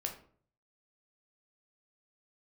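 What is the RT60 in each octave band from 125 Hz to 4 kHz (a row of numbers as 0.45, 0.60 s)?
0.80, 0.60, 0.55, 0.45, 0.40, 0.30 s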